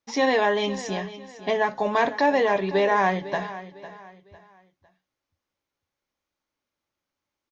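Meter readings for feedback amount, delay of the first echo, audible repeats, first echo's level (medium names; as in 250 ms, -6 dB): 33%, 503 ms, 3, -15.0 dB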